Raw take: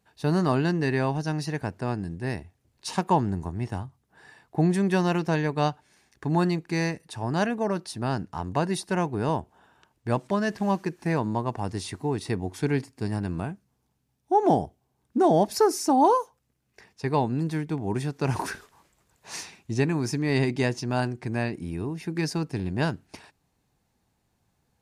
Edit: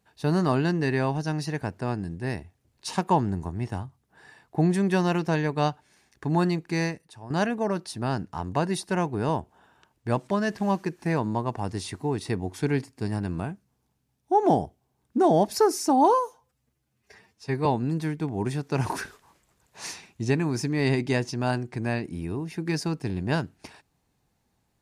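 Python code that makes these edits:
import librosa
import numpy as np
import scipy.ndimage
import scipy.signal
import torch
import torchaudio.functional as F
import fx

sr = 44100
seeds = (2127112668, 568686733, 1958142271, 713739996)

y = fx.edit(x, sr, fx.fade_out_to(start_s=6.84, length_s=0.46, curve='qua', floor_db=-12.5),
    fx.stretch_span(start_s=16.14, length_s=1.01, factor=1.5), tone=tone)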